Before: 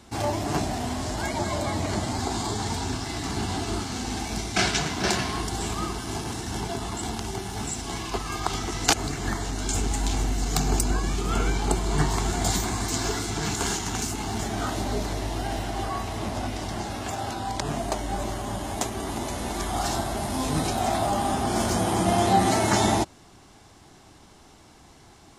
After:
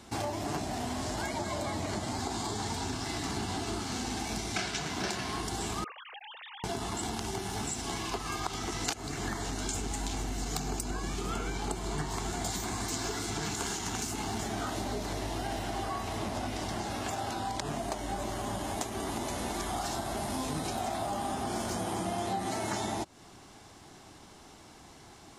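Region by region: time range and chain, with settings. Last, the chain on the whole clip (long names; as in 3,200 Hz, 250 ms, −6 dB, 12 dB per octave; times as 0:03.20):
0:05.84–0:06.64: three sine waves on the formant tracks + first difference + upward compression, threshold −42 dBFS
whole clip: low-shelf EQ 100 Hz −6 dB; downward compressor 6 to 1, threshold −31 dBFS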